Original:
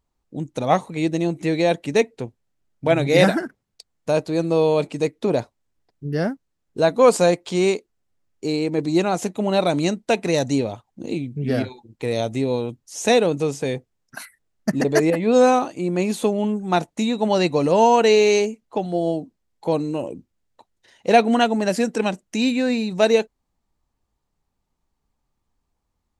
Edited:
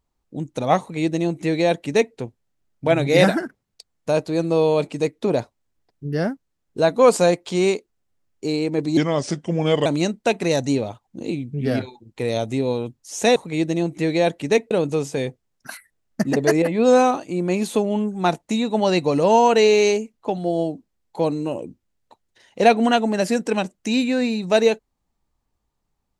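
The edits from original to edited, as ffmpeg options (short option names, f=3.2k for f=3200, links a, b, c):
-filter_complex "[0:a]asplit=5[a][b][c][d][e];[a]atrim=end=8.974[f];[b]atrim=start=8.97:end=9.69,asetpts=PTS-STARTPTS,asetrate=35721,aresample=44100[g];[c]atrim=start=9.686:end=13.192[h];[d]atrim=start=0.798:end=2.152[i];[e]atrim=start=13.188[j];[f][g]acrossfade=d=0.004:c1=hsin:c2=hsin[k];[k][h]acrossfade=d=0.004:c1=hsin:c2=hsin[l];[l][i]acrossfade=d=0.004:c1=hsin:c2=hsin[m];[m][j]acrossfade=d=0.004:c1=hsin:c2=hsin"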